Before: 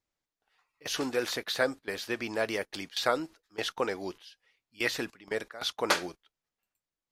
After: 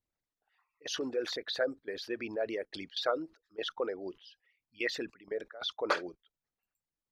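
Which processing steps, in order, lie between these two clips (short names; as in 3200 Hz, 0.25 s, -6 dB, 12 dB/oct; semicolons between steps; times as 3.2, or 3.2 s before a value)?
formant sharpening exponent 2; gain -3.5 dB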